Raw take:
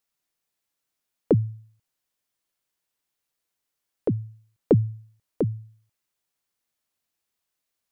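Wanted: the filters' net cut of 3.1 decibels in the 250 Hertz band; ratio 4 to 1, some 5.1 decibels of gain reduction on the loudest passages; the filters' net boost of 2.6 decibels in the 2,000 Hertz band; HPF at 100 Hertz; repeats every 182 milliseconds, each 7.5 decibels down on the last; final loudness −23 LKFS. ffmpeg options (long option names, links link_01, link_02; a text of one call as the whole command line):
ffmpeg -i in.wav -af "highpass=100,equalizer=frequency=250:width_type=o:gain=-4,equalizer=frequency=2000:width_type=o:gain=3.5,acompressor=threshold=-22dB:ratio=4,aecho=1:1:182|364|546|728|910:0.422|0.177|0.0744|0.0312|0.0131,volume=10dB" out.wav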